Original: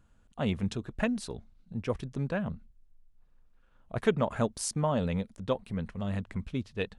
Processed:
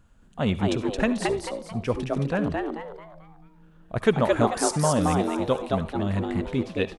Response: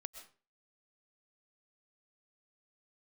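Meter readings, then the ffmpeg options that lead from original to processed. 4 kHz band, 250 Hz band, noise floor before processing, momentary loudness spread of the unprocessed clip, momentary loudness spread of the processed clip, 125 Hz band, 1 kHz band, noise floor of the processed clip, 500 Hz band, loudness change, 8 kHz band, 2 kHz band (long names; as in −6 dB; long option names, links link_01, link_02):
+7.5 dB, +7.5 dB, −64 dBFS, 10 LU, 11 LU, +5.5 dB, +10.0 dB, −55 dBFS, +8.0 dB, +7.0 dB, +7.5 dB, +7.5 dB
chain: -filter_complex "[0:a]asplit=6[link_01][link_02][link_03][link_04][link_05][link_06];[link_02]adelay=220,afreqshift=150,volume=-3dB[link_07];[link_03]adelay=440,afreqshift=300,volume=-12.1dB[link_08];[link_04]adelay=660,afreqshift=450,volume=-21.2dB[link_09];[link_05]adelay=880,afreqshift=600,volume=-30.4dB[link_10];[link_06]adelay=1100,afreqshift=750,volume=-39.5dB[link_11];[link_01][link_07][link_08][link_09][link_10][link_11]amix=inputs=6:normalize=0,asplit=2[link_12][link_13];[1:a]atrim=start_sample=2205,asetrate=79380,aresample=44100[link_14];[link_13][link_14]afir=irnorm=-1:irlink=0,volume=8.5dB[link_15];[link_12][link_15]amix=inputs=2:normalize=0"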